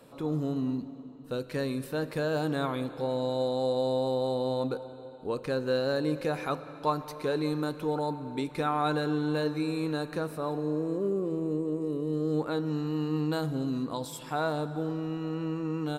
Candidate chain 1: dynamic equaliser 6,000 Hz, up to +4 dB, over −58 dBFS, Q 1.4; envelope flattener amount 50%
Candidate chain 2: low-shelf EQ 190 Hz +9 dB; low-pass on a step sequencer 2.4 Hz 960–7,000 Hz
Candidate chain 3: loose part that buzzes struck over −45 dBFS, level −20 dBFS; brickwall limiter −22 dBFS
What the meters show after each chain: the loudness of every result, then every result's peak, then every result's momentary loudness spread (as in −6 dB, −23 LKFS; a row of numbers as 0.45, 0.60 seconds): −28.0, −27.5, −32.0 LKFS; −14.0, −7.5, −22.0 dBFS; 4, 6, 4 LU